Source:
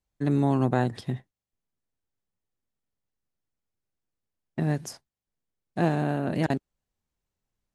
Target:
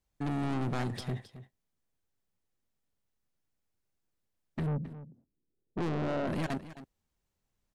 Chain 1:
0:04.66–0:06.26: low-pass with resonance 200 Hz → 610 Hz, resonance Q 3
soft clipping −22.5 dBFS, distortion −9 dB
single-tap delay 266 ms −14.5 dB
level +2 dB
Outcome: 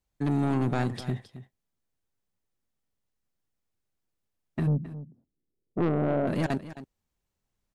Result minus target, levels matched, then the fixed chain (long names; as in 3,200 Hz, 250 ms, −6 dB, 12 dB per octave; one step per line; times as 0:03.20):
soft clipping: distortion −5 dB
0:04.66–0:06.26: low-pass with resonance 200 Hz → 610 Hz, resonance Q 3
soft clipping −31.5 dBFS, distortion −4 dB
single-tap delay 266 ms −14.5 dB
level +2 dB